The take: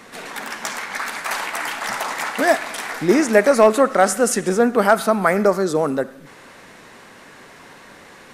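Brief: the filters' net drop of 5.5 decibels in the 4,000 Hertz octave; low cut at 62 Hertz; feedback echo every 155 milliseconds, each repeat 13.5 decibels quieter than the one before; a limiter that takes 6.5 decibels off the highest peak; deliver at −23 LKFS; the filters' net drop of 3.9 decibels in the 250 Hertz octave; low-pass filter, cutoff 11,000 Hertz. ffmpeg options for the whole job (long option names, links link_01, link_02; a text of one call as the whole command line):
ffmpeg -i in.wav -af "highpass=62,lowpass=11000,equalizer=frequency=250:width_type=o:gain=-5,equalizer=frequency=4000:width_type=o:gain=-7.5,alimiter=limit=-9.5dB:level=0:latency=1,aecho=1:1:155|310:0.211|0.0444,volume=-0.5dB" out.wav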